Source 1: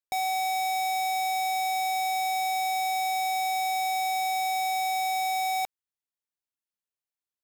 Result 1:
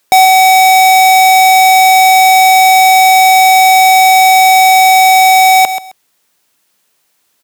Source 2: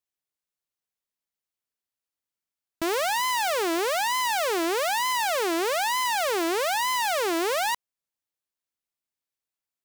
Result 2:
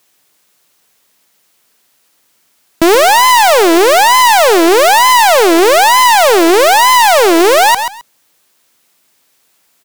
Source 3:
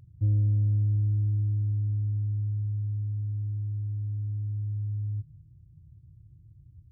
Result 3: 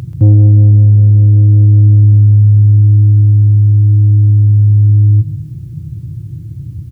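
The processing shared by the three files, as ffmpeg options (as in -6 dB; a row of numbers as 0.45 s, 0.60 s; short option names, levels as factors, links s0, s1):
-filter_complex "[0:a]highpass=140,asplit=2[s0][s1];[s1]acompressor=threshold=0.00794:ratio=6,volume=1.26[s2];[s0][s2]amix=inputs=2:normalize=0,asoftclip=type=tanh:threshold=0.0708,aecho=1:1:132|264:0.178|0.032,alimiter=level_in=25.1:limit=0.891:release=50:level=0:latency=1,volume=0.891"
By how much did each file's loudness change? +22.5 LU, +18.0 LU, +21.5 LU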